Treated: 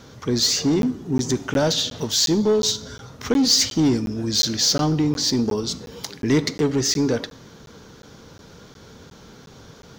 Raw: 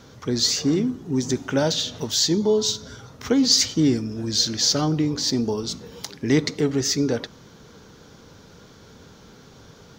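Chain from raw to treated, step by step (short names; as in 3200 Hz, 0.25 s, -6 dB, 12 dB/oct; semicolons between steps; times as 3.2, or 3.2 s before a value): in parallel at -9 dB: wavefolder -19.5 dBFS; on the sum: reverb RT60 0.85 s, pre-delay 5 ms, DRR 18 dB; crackling interface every 0.36 s, samples 512, zero, from 0.82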